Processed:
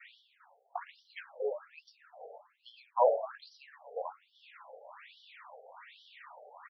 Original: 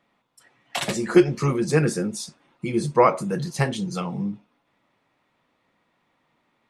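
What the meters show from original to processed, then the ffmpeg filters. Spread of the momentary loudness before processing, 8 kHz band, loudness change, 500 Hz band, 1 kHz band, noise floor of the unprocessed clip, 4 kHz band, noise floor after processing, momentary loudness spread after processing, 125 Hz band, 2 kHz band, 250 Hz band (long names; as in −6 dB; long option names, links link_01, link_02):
14 LU, below −40 dB, −11.5 dB, −11.0 dB, −9.5 dB, −71 dBFS, −19.5 dB, −72 dBFS, 25 LU, below −40 dB, −18.5 dB, below −40 dB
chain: -filter_complex "[0:a]bandreject=frequency=221.8:width_type=h:width=4,bandreject=frequency=443.6:width_type=h:width=4,bandreject=frequency=665.4:width_type=h:width=4,bandreject=frequency=887.2:width_type=h:width=4,bandreject=frequency=1109:width_type=h:width=4,bandreject=frequency=1330.8:width_type=h:width=4,bandreject=frequency=1552.6:width_type=h:width=4,areverse,acompressor=mode=upward:threshold=-21dB:ratio=2.5,areverse,aexciter=amount=15.7:drive=7.1:freq=8500,lowshelf=frequency=230:gain=7,acrossover=split=210|1200[link_01][link_02][link_03];[link_03]acompressor=threshold=-33dB:ratio=16[link_04];[link_01][link_02][link_04]amix=inputs=3:normalize=0,asplit=6[link_05][link_06][link_07][link_08][link_09][link_10];[link_06]adelay=119,afreqshift=82,volume=-16.5dB[link_11];[link_07]adelay=238,afreqshift=164,volume=-21.5dB[link_12];[link_08]adelay=357,afreqshift=246,volume=-26.6dB[link_13];[link_09]adelay=476,afreqshift=328,volume=-31.6dB[link_14];[link_10]adelay=595,afreqshift=410,volume=-36.6dB[link_15];[link_05][link_11][link_12][link_13][link_14][link_15]amix=inputs=6:normalize=0,flanger=delay=1.3:depth=7.7:regen=61:speed=0.93:shape=triangular,adynamicequalizer=threshold=0.00708:dfrequency=1000:dqfactor=1.7:tfrequency=1000:tqfactor=1.7:attack=5:release=100:ratio=0.375:range=2.5:mode=cutabove:tftype=bell,afftfilt=real='re*between(b*sr/1024,570*pow(4200/570,0.5+0.5*sin(2*PI*1.2*pts/sr))/1.41,570*pow(4200/570,0.5+0.5*sin(2*PI*1.2*pts/sr))*1.41)':imag='im*between(b*sr/1024,570*pow(4200/570,0.5+0.5*sin(2*PI*1.2*pts/sr))/1.41,570*pow(4200/570,0.5+0.5*sin(2*PI*1.2*pts/sr))*1.41)':win_size=1024:overlap=0.75"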